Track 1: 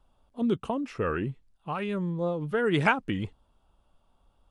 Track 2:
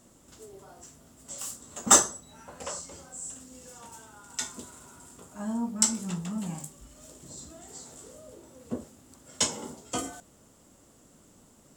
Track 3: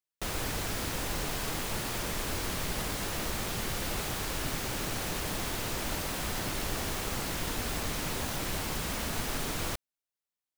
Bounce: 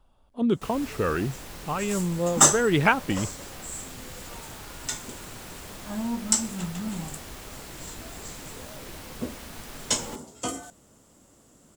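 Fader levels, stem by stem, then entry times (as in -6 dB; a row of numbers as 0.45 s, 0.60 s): +3.0 dB, +1.0 dB, -8.0 dB; 0.00 s, 0.50 s, 0.40 s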